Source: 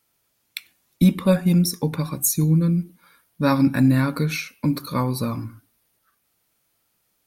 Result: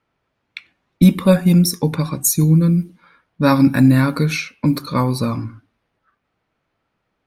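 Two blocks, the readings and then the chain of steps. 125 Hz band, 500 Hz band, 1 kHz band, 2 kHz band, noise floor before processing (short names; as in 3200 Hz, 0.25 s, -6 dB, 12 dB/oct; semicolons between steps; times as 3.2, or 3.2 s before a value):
+5.0 dB, +5.0 dB, +5.0 dB, +5.0 dB, -70 dBFS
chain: low-pass opened by the level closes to 2000 Hz, open at -17.5 dBFS; gain +5 dB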